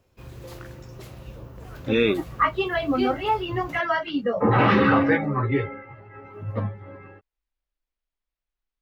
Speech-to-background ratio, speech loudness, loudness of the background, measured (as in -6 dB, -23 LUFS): 19.0 dB, -23.0 LUFS, -42.0 LUFS